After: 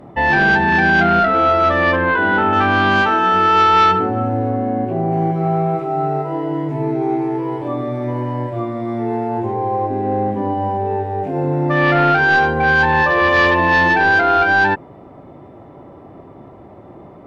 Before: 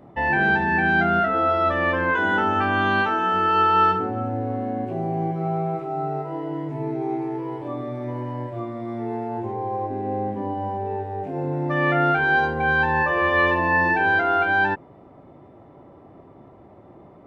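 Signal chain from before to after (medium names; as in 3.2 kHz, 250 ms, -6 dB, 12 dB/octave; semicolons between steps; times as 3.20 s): 4.50–5.12 s: treble shelf 3.7 kHz -10.5 dB; sine folder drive 4 dB, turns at -8 dBFS; 1.96–2.53 s: distance through air 250 m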